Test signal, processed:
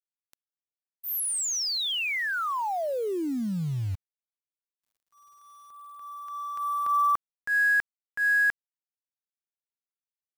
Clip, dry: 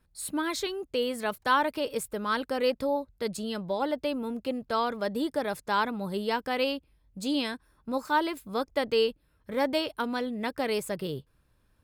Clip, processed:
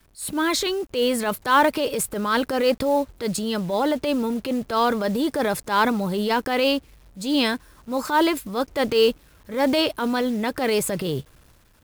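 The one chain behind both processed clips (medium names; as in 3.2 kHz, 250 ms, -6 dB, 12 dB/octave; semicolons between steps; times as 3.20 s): companded quantiser 6-bit; transient shaper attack -8 dB, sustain +5 dB; trim +8.5 dB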